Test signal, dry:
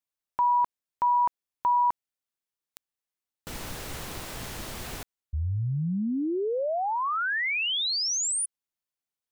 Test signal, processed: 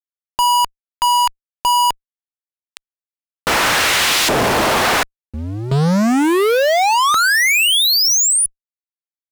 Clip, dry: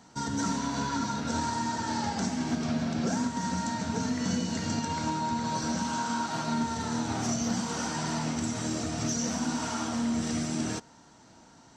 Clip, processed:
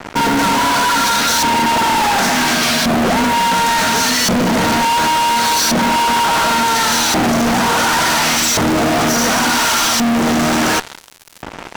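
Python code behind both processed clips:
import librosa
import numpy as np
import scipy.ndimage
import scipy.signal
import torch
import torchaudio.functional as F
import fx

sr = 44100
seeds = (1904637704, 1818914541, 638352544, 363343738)

y = fx.filter_lfo_bandpass(x, sr, shape='saw_up', hz=0.7, low_hz=460.0, high_hz=4000.0, q=0.8)
y = fx.fuzz(y, sr, gain_db=56.0, gate_db=-56.0)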